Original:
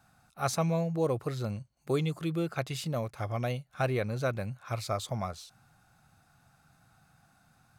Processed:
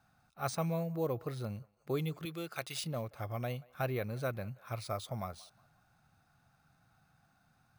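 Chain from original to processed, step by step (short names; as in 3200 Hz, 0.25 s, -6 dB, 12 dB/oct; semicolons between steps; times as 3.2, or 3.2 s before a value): 2.25–2.84 tilt +3 dB/oct; narrowing echo 0.18 s, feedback 44%, band-pass 1000 Hz, level -22 dB; careless resampling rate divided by 3×, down filtered, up hold; gain -5.5 dB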